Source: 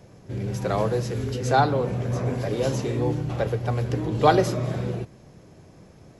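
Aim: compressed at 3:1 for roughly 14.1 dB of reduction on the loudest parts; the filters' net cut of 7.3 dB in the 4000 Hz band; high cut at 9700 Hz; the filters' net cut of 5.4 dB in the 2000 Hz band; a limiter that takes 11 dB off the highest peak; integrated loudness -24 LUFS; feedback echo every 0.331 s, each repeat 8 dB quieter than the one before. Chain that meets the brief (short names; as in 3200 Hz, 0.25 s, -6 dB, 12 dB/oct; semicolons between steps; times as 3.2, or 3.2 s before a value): LPF 9700 Hz; bell 2000 Hz -7 dB; bell 4000 Hz -7 dB; compressor 3:1, threshold -33 dBFS; limiter -31 dBFS; feedback echo 0.331 s, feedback 40%, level -8 dB; gain +15.5 dB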